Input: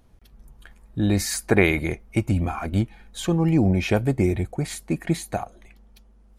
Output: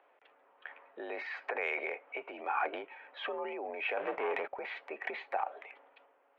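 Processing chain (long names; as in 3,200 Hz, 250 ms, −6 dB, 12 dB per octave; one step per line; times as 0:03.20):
0:03.97–0:04.48: leveller curve on the samples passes 3
downward compressor 3 to 1, threshold −28 dBFS, peak gain reduction 12.5 dB
brickwall limiter −22 dBFS, peak gain reduction 8.5 dB
single-sideband voice off tune +58 Hz 450–2,700 Hz
transient designer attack 0 dB, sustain +7 dB
level +2.5 dB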